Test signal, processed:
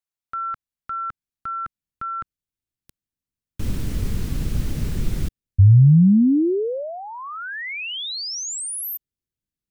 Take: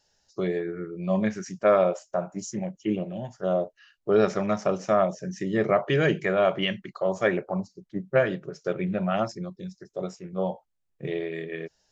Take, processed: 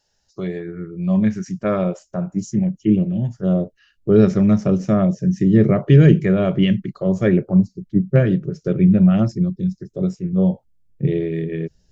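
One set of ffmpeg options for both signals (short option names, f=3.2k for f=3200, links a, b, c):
-af "asubboost=boost=12:cutoff=240"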